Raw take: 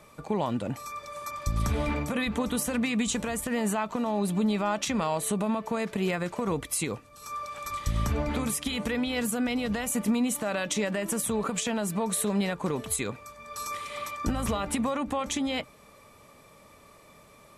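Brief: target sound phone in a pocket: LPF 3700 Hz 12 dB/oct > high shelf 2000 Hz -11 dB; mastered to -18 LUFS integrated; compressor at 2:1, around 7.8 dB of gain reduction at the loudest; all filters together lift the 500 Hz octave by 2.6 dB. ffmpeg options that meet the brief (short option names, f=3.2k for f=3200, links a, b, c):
-af "equalizer=f=500:t=o:g=4,acompressor=threshold=-36dB:ratio=2,lowpass=3.7k,highshelf=f=2k:g=-11,volume=18.5dB"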